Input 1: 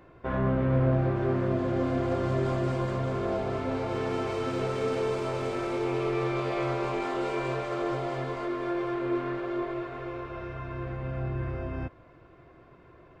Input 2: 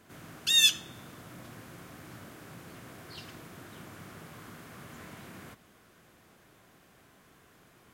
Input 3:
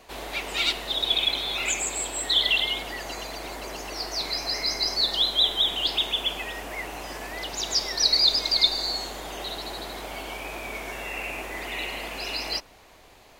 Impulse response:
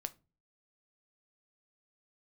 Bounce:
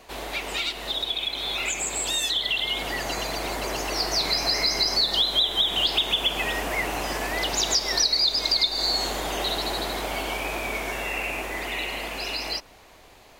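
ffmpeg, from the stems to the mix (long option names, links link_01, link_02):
-filter_complex "[1:a]adelay=1600,volume=-1.5dB[link_01];[2:a]volume=2dB[link_02];[link_01][link_02]amix=inputs=2:normalize=0,acompressor=threshold=-25dB:ratio=6,volume=0dB,dynaudnorm=framelen=270:gausssize=21:maxgain=5.5dB"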